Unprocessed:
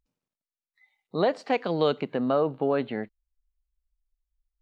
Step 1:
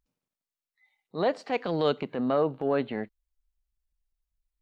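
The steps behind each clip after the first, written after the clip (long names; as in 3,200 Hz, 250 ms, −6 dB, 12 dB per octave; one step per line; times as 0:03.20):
transient designer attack −7 dB, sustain −1 dB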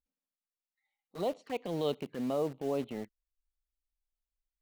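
flanger swept by the level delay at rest 3.8 ms, full sweep at −26 dBFS
in parallel at −6.5 dB: bit reduction 6 bits
on the sum: level −9 dB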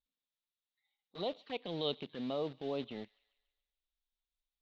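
transistor ladder low-pass 4,000 Hz, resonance 70%
delay with a high-pass on its return 142 ms, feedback 50%, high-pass 1,600 Hz, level −21 dB
level +6.5 dB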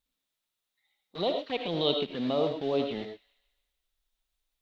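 convolution reverb, pre-delay 35 ms, DRR 4.5 dB
level +8 dB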